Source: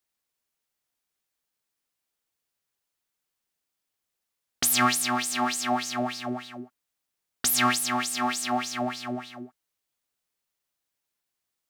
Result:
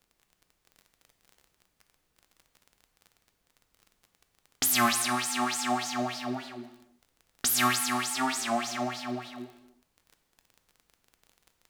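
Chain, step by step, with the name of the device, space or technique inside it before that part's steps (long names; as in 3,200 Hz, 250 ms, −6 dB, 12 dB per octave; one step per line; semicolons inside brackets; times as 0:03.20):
warped LP (wow of a warped record 33 1/3 rpm, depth 100 cents; surface crackle 25 per second −38 dBFS; pink noise bed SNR 43 dB)
reverb whose tail is shaped and stops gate 380 ms falling, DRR 7.5 dB
level −2.5 dB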